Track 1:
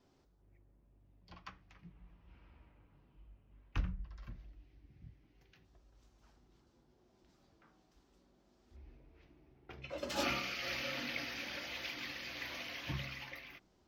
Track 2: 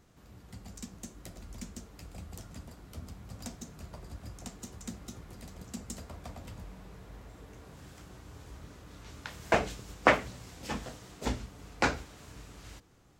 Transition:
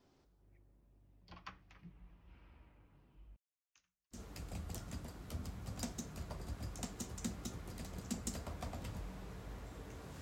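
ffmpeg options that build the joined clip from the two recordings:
-filter_complex "[0:a]asettb=1/sr,asplit=3[a][b][c];[a]atrim=end=3.364[d];[b]atrim=start=3.36:end=4.21,asetpts=PTS-STARTPTS,afade=t=in:d=0.004:c=qsin,afade=t=out:st=0.846:d=0.004:c=qsin,bandpass=f=6.8k:t=q:w=7.7:csg=0[e];[c]atrim=start=4.206[f];[d][e]acrossfade=d=0.004:c1=hsin:c2=qsin[g];[g][f]acrossfade=d=0.004:c1=qsin:c2=hsin,apad=whole_dur=10.21,atrim=end=10.21,atrim=end=4.21,asetpts=PTS-STARTPTS[h];[1:a]atrim=start=1.74:end=7.84,asetpts=PTS-STARTPTS[i];[h][i]acrossfade=d=0.1:c1=tri:c2=tri"

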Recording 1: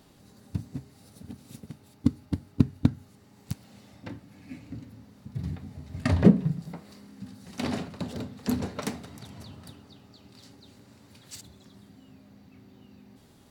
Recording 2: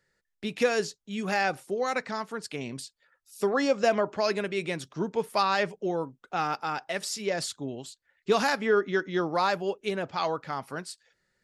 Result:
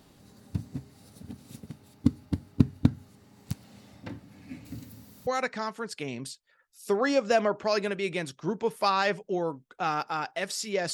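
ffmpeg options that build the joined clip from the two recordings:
-filter_complex "[0:a]asettb=1/sr,asplit=3[a][b][c];[a]atrim=end=4.654[d];[b]atrim=start=4.65:end=5.27,asetpts=PTS-STARTPTS,afade=t=in:d=0.004:c=qsin,afade=t=out:st=0.616:d=0.004:c=qsin,aemphasis=mode=production:type=75fm[e];[c]atrim=start=5.266[f];[d][e]acrossfade=d=0.004:c1=hsin:c2=qsin[g];[g][f]acrossfade=d=0.004:c1=qsin:c2=hsin,apad=whole_dur=10.93,atrim=end=10.93,atrim=end=5.272[h];[1:a]atrim=start=1.798:end=7.46[i];[h][i]acrossfade=d=0.004:c1=hsin:c2=hsin"

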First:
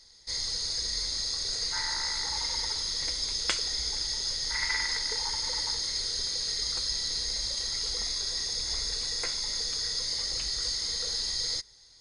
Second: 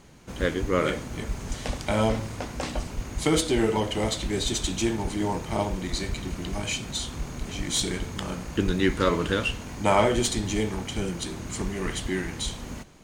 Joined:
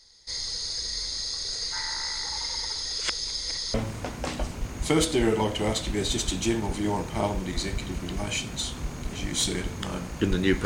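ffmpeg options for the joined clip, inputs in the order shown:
-filter_complex "[0:a]apad=whole_dur=10.65,atrim=end=10.65,asplit=2[a][b];[a]atrim=end=2.852[c];[b]atrim=start=2.848:end=3.742,asetpts=PTS-STARTPTS,areverse[d];[1:a]atrim=start=2.098:end=9.01[e];[c][d]acrossfade=d=0.004:c1=hsin:c2=hsin[f];[f][e]acrossfade=d=0.004:c1=hsin:c2=hsin"

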